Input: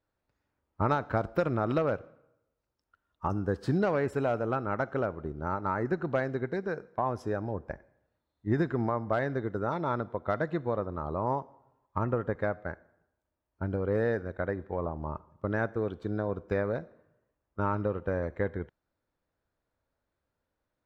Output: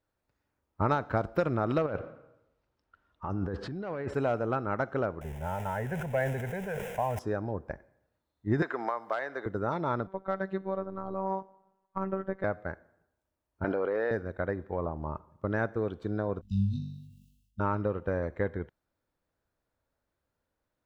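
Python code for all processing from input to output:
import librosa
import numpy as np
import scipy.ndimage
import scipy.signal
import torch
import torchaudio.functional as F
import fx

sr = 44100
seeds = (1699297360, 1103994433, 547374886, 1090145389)

y = fx.chain(x, sr, fx.over_compress(threshold_db=-34.0, ratio=-1.0),
    fx.lowpass(hz=4000.0, slope=12),
    fx.transient(attack_db=-1, sustain_db=3), at=(1.86, 4.14))
y = fx.chain(y, sr, fx.zero_step(step_db=-38.5),
    fx.fixed_phaser(hz=1200.0, stages=6),
    fx.sustainer(db_per_s=35.0), at=(5.21, 7.19))
y = fx.chain(y, sr, fx.highpass(hz=680.0, slope=12),
    fx.band_squash(depth_pct=100), at=(8.62, 9.46))
y = fx.chain(y, sr, fx.lowpass(hz=3500.0, slope=6),
    fx.robotise(hz=192.0), at=(10.07, 12.44))
y = fx.chain(y, sr, fx.bandpass_edges(low_hz=470.0, high_hz=3900.0),
    fx.env_flatten(amount_pct=100), at=(13.64, 14.11))
y = fx.chain(y, sr, fx.brickwall_bandstop(low_hz=260.0, high_hz=2600.0),
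    fx.room_flutter(wall_m=3.5, rt60_s=0.51),
    fx.sustainer(db_per_s=57.0), at=(16.41, 17.6))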